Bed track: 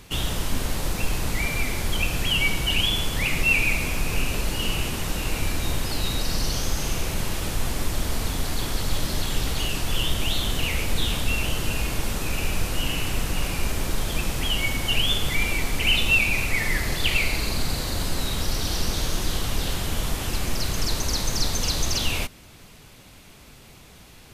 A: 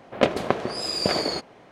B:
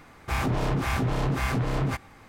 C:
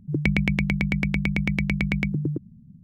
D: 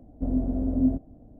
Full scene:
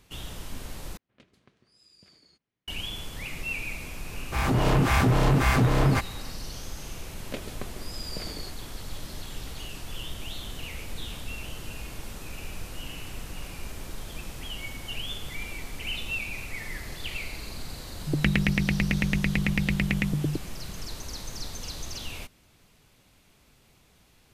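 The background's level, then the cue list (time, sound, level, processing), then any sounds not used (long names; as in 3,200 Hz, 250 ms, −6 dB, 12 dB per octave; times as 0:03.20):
bed track −12.5 dB
0:00.97: overwrite with A −15.5 dB + guitar amp tone stack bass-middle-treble 6-0-2
0:04.04: mix in B −2 dB + automatic gain control gain up to 7 dB
0:07.11: mix in A −11 dB + parametric band 810 Hz −11 dB 2.1 octaves
0:17.99: mix in C −1.5 dB + highs frequency-modulated by the lows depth 0.32 ms
not used: D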